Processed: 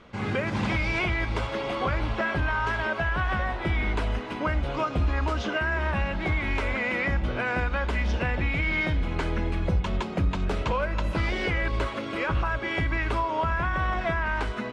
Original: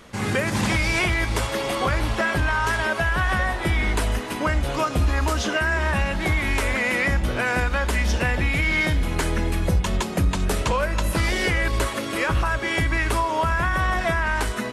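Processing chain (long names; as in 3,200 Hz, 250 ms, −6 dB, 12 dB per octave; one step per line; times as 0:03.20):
low-pass filter 3,300 Hz 12 dB per octave
notch filter 1,800 Hz, Q 13
level −4 dB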